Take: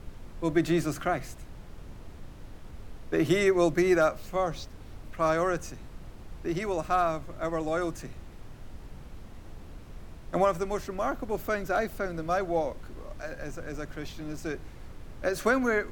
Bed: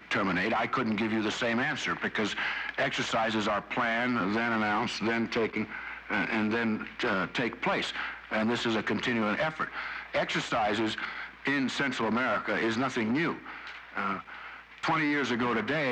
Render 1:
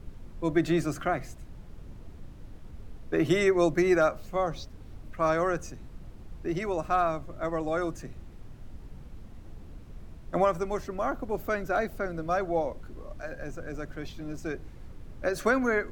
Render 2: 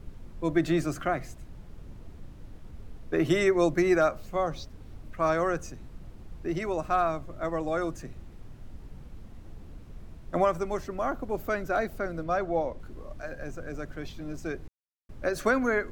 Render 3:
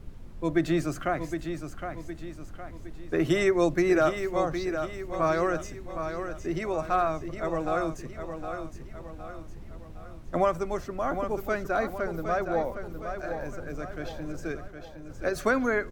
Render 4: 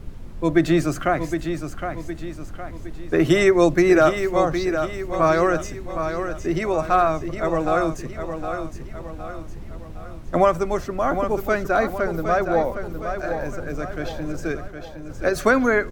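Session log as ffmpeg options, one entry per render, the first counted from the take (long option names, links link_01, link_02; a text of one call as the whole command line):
ffmpeg -i in.wav -af "afftdn=noise_reduction=6:noise_floor=-46" out.wav
ffmpeg -i in.wav -filter_complex "[0:a]asettb=1/sr,asplit=3[link_01][link_02][link_03];[link_01]atrim=end=12.234[link_04];[link_02]atrim=start=12.23:end=12.8,asetpts=PTS-STARTPTS,afade=type=in:duration=0.004:curve=qsin,afade=type=out:start_time=0.566:duration=0.004:curve=qsin,highshelf=frequency=8100:gain=-10[link_05];[link_03]atrim=start=12.796[link_06];[link_04][link_05]acrossfade=duration=0.004:curve1=hsin:curve2=qsin[link_07];[link_07][link_06]acrossfade=duration=0.004:curve1=qsin:curve2=hsin,asplit=3[link_08][link_09][link_10];[link_08]atrim=end=14.68,asetpts=PTS-STARTPTS,afade=type=out:start_time=14.676:duration=0.004:curve=hsin[link_11];[link_09]atrim=start=14.68:end=15.09,asetpts=PTS-STARTPTS,volume=0[link_12];[link_10]atrim=start=15.09,asetpts=PTS-STARTPTS,afade=type=in:duration=0.004:curve=hsin[link_13];[link_11][link_12][link_13]concat=n=3:v=0:a=1" out.wav
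ffmpeg -i in.wav -af "aecho=1:1:763|1526|2289|3052|3815:0.398|0.183|0.0842|0.0388|0.0178" out.wav
ffmpeg -i in.wav -af "volume=7.5dB" out.wav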